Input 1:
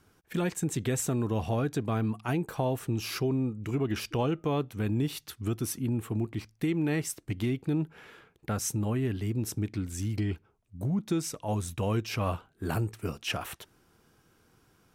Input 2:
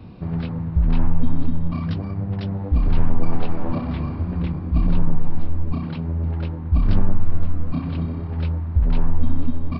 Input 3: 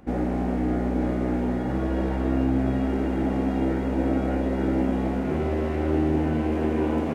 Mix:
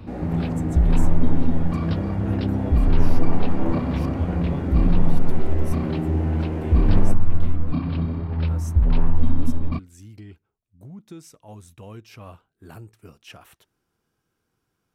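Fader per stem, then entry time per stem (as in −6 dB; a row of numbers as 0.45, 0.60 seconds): −11.5, +0.5, −5.5 decibels; 0.00, 0.00, 0.00 seconds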